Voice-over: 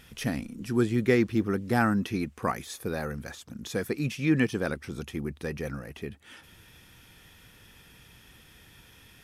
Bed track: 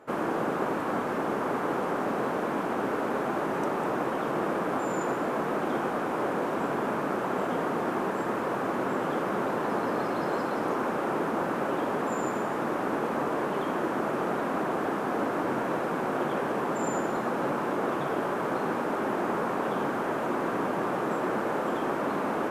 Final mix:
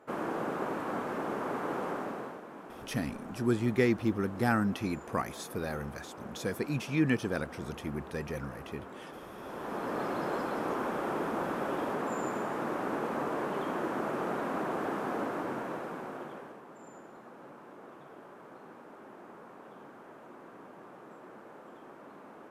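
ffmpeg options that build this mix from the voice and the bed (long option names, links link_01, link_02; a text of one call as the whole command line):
ffmpeg -i stem1.wav -i stem2.wav -filter_complex "[0:a]adelay=2700,volume=-3.5dB[link_01];[1:a]volume=7.5dB,afade=type=out:start_time=1.88:duration=0.54:silence=0.251189,afade=type=in:start_time=9.38:duration=0.67:silence=0.223872,afade=type=out:start_time=15.06:duration=1.55:silence=0.141254[link_02];[link_01][link_02]amix=inputs=2:normalize=0" out.wav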